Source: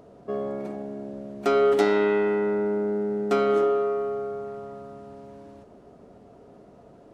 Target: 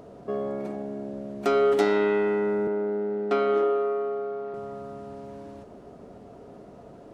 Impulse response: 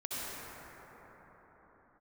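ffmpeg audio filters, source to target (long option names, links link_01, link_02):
-filter_complex "[0:a]asettb=1/sr,asplit=3[link_01][link_02][link_03];[link_01]atrim=end=2.674[link_04];[link_02]atrim=start=2.67:end=4.54,asetpts=PTS-STARTPTS,afade=type=in:duration=0.004:curve=qsin,afade=type=out:start_time=1.866:duration=0.004:curve=qsin,acrossover=split=210 4800:gain=0.2 1 0.126[link_05][link_06][link_07];[link_05][link_06][link_07]amix=inputs=3:normalize=0[link_08];[link_03]atrim=start=4.536[link_09];[link_04][link_08]acrossfade=duration=0.004:curve1=hsin:curve2=qsin[link_10];[link_10][link_09]acrossfade=duration=0.004:curve1=qsin:curve2=hsin,asplit=2[link_11][link_12];[link_12]acompressor=threshold=-40dB:ratio=6,volume=0dB[link_13];[link_11][link_13]amix=inputs=2:normalize=0,volume=-2dB"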